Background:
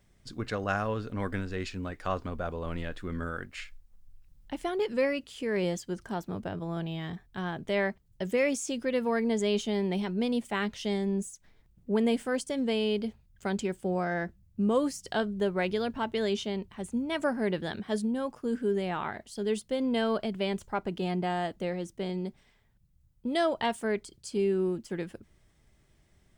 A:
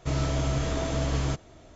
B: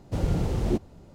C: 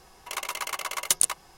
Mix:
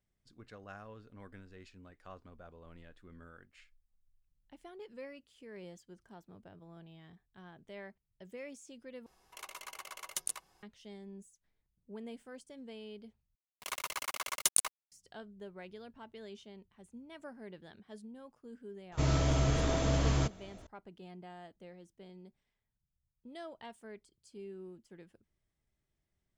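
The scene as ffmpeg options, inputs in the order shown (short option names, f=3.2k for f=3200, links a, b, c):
-filter_complex "[3:a]asplit=2[a][b];[0:a]volume=-19.5dB[c];[b]aeval=exprs='val(0)*gte(abs(val(0)),0.0178)':c=same[d];[c]asplit=3[e][f][g];[e]atrim=end=9.064[h];[a]atrim=end=1.57,asetpts=PTS-STARTPTS,volume=-15dB[i];[f]atrim=start=10.626:end=13.354[j];[d]atrim=end=1.57,asetpts=PTS-STARTPTS,volume=-6.5dB[k];[g]atrim=start=14.916[l];[1:a]atrim=end=1.75,asetpts=PTS-STARTPTS,volume=-2dB,afade=t=in:d=0.004:c=hsin,afade=t=out:st=1.746:d=0.004:c=hsin,adelay=834372S[m];[h][i]acrossfade=d=0.004:c1=hsin:c2=hsin[n];[n][j]acrossfade=d=0.004:c1=hsin:c2=hsin[o];[o][k]acrossfade=d=0.004:c1=hsin:c2=hsin[p];[p][l]acrossfade=d=0.004:c1=hsin:c2=hsin[q];[q][m]amix=inputs=2:normalize=0"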